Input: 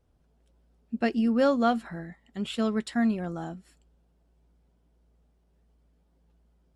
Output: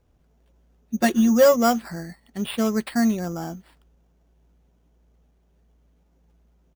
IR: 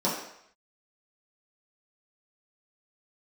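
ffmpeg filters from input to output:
-filter_complex "[0:a]acrusher=samples=7:mix=1:aa=0.000001,asplit=3[a][b][c];[a]afade=t=out:st=0.94:d=0.02[d];[b]aecho=1:1:5.5:0.88,afade=t=in:st=0.94:d=0.02,afade=t=out:st=1.55:d=0.02[e];[c]afade=t=in:st=1.55:d=0.02[f];[d][e][f]amix=inputs=3:normalize=0,volume=4.5dB"

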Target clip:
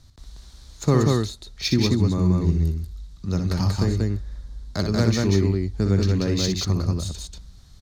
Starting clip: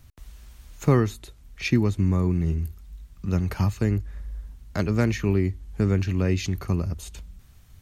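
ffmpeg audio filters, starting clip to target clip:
-af "highshelf=f=3.3k:t=q:w=3:g=6.5,aecho=1:1:61.22|186.6:0.447|0.794,adynamicsmooth=sensitivity=3.5:basefreq=6.5k"

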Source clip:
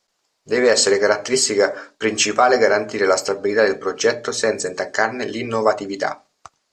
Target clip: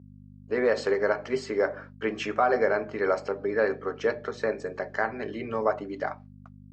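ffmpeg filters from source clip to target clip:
-af "agate=range=-33dB:threshold=-35dB:ratio=3:detection=peak,aeval=exprs='val(0)+0.0224*(sin(2*PI*50*n/s)+sin(2*PI*2*50*n/s)/2+sin(2*PI*3*50*n/s)/3+sin(2*PI*4*50*n/s)/4+sin(2*PI*5*50*n/s)/5)':c=same,highpass=110,lowpass=2.2k,volume=-8.5dB"

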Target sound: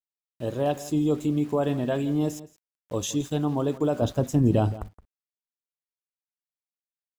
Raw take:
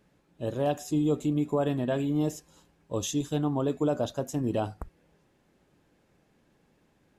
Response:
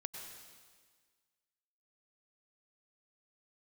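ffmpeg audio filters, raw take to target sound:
-filter_complex "[0:a]asettb=1/sr,asplit=3[a][b][c];[a]atrim=end=4.024[d];[b]atrim=start=4.02:end=4.78,asetpts=PTS-STARTPTS,afade=t=in:d=0.004:c=qsin,afade=t=out:st=0.756:d=0.004:c=qsin,lowshelf=f=260:g=12[e];[c]atrim=start=4.776[f];[d][e]acrossfade=d=0.004:c1=hsin:c2=qsin[g];[g][f]acrossfade=d=0.004:c1=qsin:c2=hsin,aeval=exprs='val(0)*gte(abs(val(0)),0.00447)':c=same,asplit=2[h][i];[i]adelay=169.1,volume=-17dB,highshelf=f=4k:g=-3.8[j];[h][j]amix=inputs=2:normalize=0,volume=2dB"

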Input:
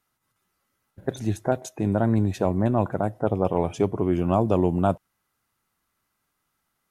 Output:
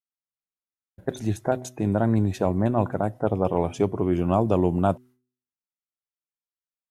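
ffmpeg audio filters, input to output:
-af "agate=range=-33dB:threshold=-43dB:ratio=3:detection=peak,bandreject=f=125:t=h:w=4,bandreject=f=250:t=h:w=4,bandreject=f=375:t=h:w=4"

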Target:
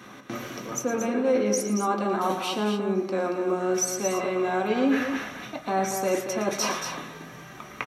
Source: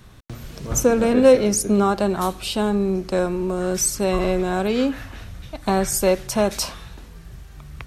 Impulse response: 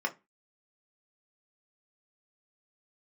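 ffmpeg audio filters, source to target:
-filter_complex "[0:a]areverse,acompressor=threshold=-29dB:ratio=10,areverse,aecho=1:1:113.7|230.3:0.282|0.447[a];[1:a]atrim=start_sample=2205,asetrate=48510,aresample=44100[b];[a][b]afir=irnorm=-1:irlink=0,volume=2.5dB"

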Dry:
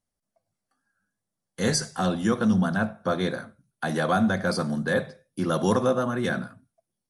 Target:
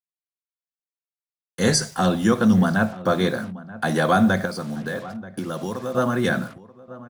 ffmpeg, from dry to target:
-filter_complex "[0:a]asettb=1/sr,asplit=3[a][b][c];[a]atrim=end=4.454[d];[b]atrim=start=4.45:end=5.95,asetpts=PTS-STARTPTS,afade=t=in:d=0.004:c=qsin,afade=t=out:st=1.496:d=0.004:c=qsin,acompressor=threshold=-31dB:ratio=8[e];[c]atrim=start=5.946[f];[d][e]acrossfade=d=0.004:c1=hsin:c2=qsin[g];[g][f]acrossfade=d=0.004:c1=qsin:c2=hsin,acrusher=bits=7:mix=0:aa=0.5,asplit=2[h][i];[i]adelay=932.9,volume=-17dB,highshelf=f=4k:g=-21[j];[h][j]amix=inputs=2:normalize=0,volume=5dB"

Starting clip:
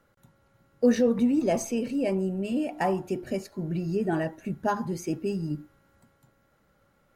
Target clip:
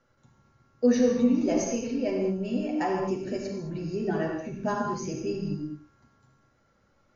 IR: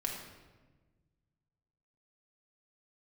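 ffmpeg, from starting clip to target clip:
-filter_complex "[0:a]aexciter=amount=2:drive=2.2:freq=4.7k[a];[1:a]atrim=start_sample=2205,afade=t=out:st=0.17:d=0.01,atrim=end_sample=7938,asetrate=22932,aresample=44100[b];[a][b]afir=irnorm=-1:irlink=0,volume=-6.5dB" -ar 16000 -c:a libmp3lame -b:a 48k

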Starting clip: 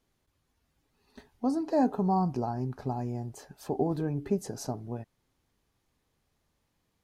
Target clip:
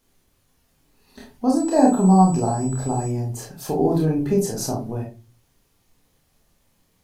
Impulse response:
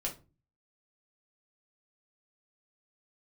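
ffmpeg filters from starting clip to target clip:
-filter_complex "[0:a]highshelf=f=6.1k:g=9,asettb=1/sr,asplit=3[a][b][c];[a]atrim=end=1.564[d];[b]atrim=start=1.56:end=3.08,asetpts=PTS-STARTPTS,afade=t=in:d=0.004:c=qsin,afade=t=out:st=1.516:d=0.004:c=qsin,aeval=exprs='val(0)+0.00447*sin(2*PI*7900*n/s)':c=same[e];[c]atrim=start=3.076[f];[d][e]acrossfade=d=0.004:c1=hsin:c2=qsin[g];[g][f]acrossfade=d=0.004:c1=qsin:c2=hsin,asplit=2[h][i];[1:a]atrim=start_sample=2205,adelay=27[j];[i][j]afir=irnorm=-1:irlink=0,volume=-0.5dB[k];[h][k]amix=inputs=2:normalize=0,volume=5.5dB"

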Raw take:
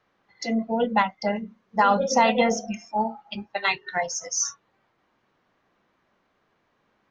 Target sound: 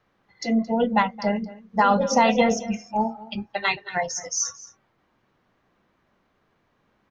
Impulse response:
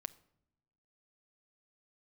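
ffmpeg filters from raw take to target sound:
-filter_complex "[0:a]lowshelf=f=200:g=8,asplit=2[a][b];[b]aecho=0:1:221:0.119[c];[a][c]amix=inputs=2:normalize=0"

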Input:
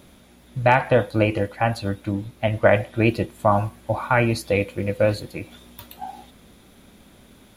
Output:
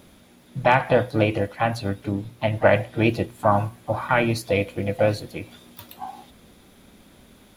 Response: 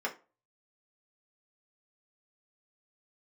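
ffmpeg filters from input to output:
-filter_complex "[0:a]asplit=2[a][b];[b]asetrate=58866,aresample=44100,atempo=0.749154,volume=-12dB[c];[a][c]amix=inputs=2:normalize=0,bandreject=f=60:t=h:w=6,bandreject=f=120:t=h:w=6,volume=-1dB"

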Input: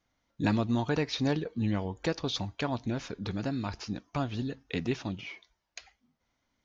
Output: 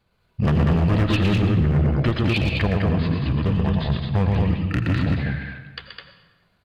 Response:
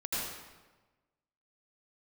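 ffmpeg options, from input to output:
-filter_complex "[0:a]equalizer=f=150:t=o:w=1:g=7.5,asplit=2[a][b];[b]aecho=0:1:119.5|209.9:0.562|0.631[c];[a][c]amix=inputs=2:normalize=0,asetrate=31183,aresample=44100,atempo=1.41421,volume=23.5dB,asoftclip=hard,volume=-23.5dB,asplit=2[d][e];[1:a]atrim=start_sample=2205,asetrate=42336,aresample=44100[f];[e][f]afir=irnorm=-1:irlink=0,volume=-13dB[g];[d][g]amix=inputs=2:normalize=0,volume=7dB"

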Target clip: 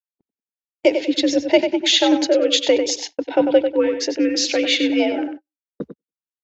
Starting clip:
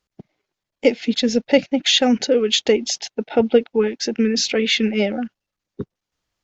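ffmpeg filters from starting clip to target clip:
-filter_complex "[0:a]afreqshift=65,asplit=2[a][b];[b]adelay=96,lowpass=f=3.9k:p=1,volume=-7dB,asplit=2[c][d];[d]adelay=96,lowpass=f=3.9k:p=1,volume=0.27,asplit=2[e][f];[f]adelay=96,lowpass=f=3.9k:p=1,volume=0.27[g];[a][c][e][g]amix=inputs=4:normalize=0,agate=range=-42dB:threshold=-31dB:ratio=16:detection=peak"

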